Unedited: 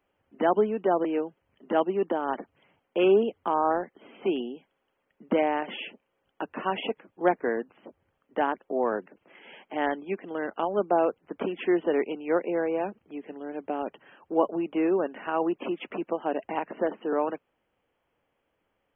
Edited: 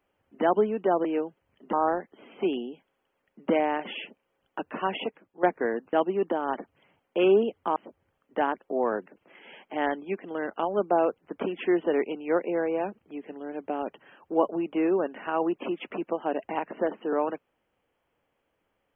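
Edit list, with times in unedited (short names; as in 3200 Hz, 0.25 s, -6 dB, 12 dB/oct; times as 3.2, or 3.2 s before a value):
1.73–3.56 move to 7.76
6.79–7.26 fade out, to -12 dB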